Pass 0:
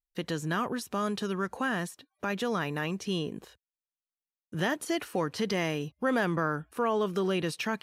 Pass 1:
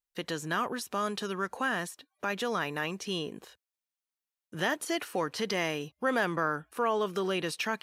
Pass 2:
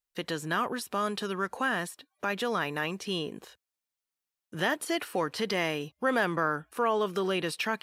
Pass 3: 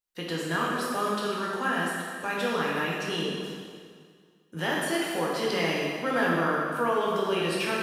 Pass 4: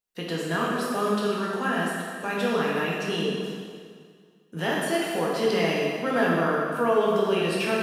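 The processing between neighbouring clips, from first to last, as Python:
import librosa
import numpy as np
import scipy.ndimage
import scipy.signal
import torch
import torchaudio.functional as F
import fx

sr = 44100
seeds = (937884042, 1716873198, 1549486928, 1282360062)

y1 = fx.low_shelf(x, sr, hz=260.0, db=-11.0)
y1 = F.gain(torch.from_numpy(y1), 1.5).numpy()
y2 = fx.dynamic_eq(y1, sr, hz=6300.0, q=4.1, threshold_db=-58.0, ratio=4.0, max_db=-6)
y2 = F.gain(torch.from_numpy(y2), 1.5).numpy()
y3 = fx.rev_plate(y2, sr, seeds[0], rt60_s=2.0, hf_ratio=0.9, predelay_ms=0, drr_db=-5.0)
y3 = F.gain(torch.from_numpy(y3), -3.5).numpy()
y4 = fx.small_body(y3, sr, hz=(210.0, 430.0, 660.0, 2700.0), ring_ms=45, db=7)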